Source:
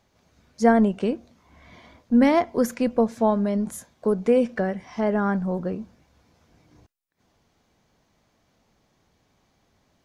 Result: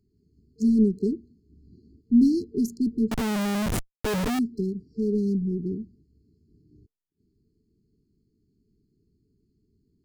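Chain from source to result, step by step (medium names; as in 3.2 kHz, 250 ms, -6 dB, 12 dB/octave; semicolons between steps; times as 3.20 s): local Wiener filter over 15 samples; FFT band-reject 450–4100 Hz; 3.11–4.39 s: Schmitt trigger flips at -41.5 dBFS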